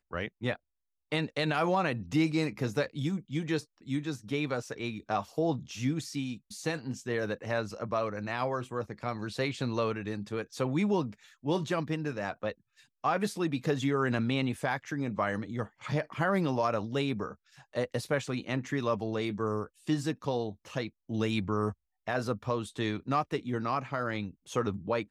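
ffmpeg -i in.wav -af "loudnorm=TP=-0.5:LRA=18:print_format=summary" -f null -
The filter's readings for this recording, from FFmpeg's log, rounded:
Input Integrated:    -32.7 LUFS
Input True Peak:     -15.4 dBTP
Input LRA:             2.3 LU
Input Threshold:     -42.7 LUFS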